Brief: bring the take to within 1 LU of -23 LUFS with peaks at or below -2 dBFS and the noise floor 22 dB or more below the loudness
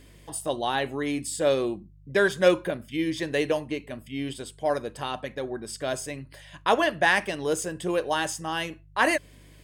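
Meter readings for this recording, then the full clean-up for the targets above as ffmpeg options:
hum 50 Hz; highest harmonic 150 Hz; hum level -50 dBFS; loudness -27.0 LUFS; peak level -8.5 dBFS; loudness target -23.0 LUFS
-> -af "bandreject=f=50:t=h:w=4,bandreject=f=100:t=h:w=4,bandreject=f=150:t=h:w=4"
-af "volume=1.58"

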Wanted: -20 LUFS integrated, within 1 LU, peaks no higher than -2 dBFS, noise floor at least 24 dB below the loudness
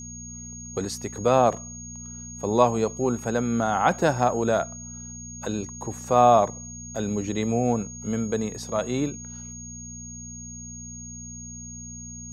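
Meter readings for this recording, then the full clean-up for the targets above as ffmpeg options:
hum 60 Hz; highest harmonic 240 Hz; hum level -39 dBFS; steady tone 6.6 kHz; tone level -39 dBFS; loudness -24.5 LUFS; peak level -5.0 dBFS; loudness target -20.0 LUFS
-> -af "bandreject=f=60:t=h:w=4,bandreject=f=120:t=h:w=4,bandreject=f=180:t=h:w=4,bandreject=f=240:t=h:w=4"
-af "bandreject=f=6600:w=30"
-af "volume=1.68,alimiter=limit=0.794:level=0:latency=1"

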